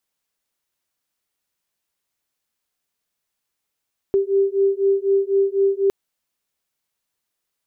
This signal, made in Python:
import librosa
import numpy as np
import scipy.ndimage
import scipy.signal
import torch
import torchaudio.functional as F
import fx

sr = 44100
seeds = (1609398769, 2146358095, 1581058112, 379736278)

y = fx.two_tone_beats(sr, length_s=1.76, hz=391.0, beat_hz=4.0, level_db=-18.5)